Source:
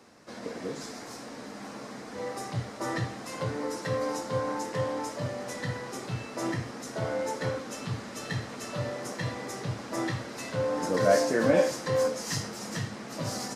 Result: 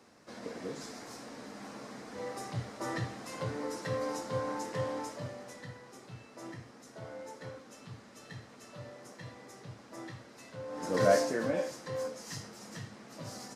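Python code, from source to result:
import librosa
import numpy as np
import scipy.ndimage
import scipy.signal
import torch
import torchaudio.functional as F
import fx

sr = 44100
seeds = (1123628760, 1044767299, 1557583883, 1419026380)

y = fx.gain(x, sr, db=fx.line((4.97, -4.5), (5.76, -14.0), (10.66, -14.0), (11.02, -1.0), (11.57, -10.5)))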